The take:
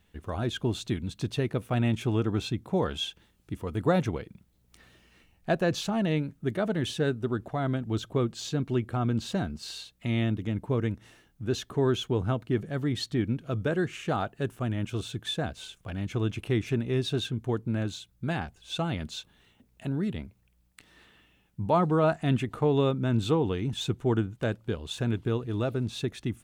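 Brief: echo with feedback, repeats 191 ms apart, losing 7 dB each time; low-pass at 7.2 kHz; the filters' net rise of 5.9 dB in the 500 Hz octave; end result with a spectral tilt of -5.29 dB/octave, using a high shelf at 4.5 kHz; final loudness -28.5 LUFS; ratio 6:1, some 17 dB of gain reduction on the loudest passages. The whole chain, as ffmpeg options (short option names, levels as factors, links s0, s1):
-af "lowpass=7200,equalizer=f=500:t=o:g=7.5,highshelf=f=4500:g=3.5,acompressor=threshold=0.02:ratio=6,aecho=1:1:191|382|573|764|955:0.447|0.201|0.0905|0.0407|0.0183,volume=2.82"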